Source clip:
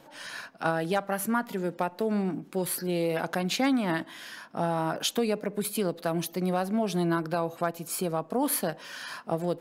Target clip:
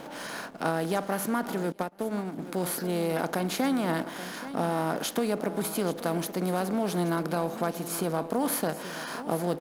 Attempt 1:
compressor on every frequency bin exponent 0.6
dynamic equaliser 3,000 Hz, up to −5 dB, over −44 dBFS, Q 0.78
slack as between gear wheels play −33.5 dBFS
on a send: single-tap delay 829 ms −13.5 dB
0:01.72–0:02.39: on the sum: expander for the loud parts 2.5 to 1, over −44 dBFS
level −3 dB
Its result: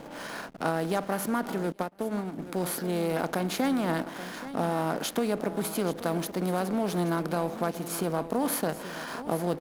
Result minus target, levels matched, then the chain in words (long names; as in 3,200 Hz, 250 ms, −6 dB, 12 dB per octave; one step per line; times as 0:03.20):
slack as between gear wheels: distortion +7 dB
compressor on every frequency bin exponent 0.6
dynamic equaliser 3,000 Hz, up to −5 dB, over −44 dBFS, Q 0.78
slack as between gear wheels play −41.5 dBFS
on a send: single-tap delay 829 ms −13.5 dB
0:01.72–0:02.39: on the sum: expander for the loud parts 2.5 to 1, over −44 dBFS
level −3 dB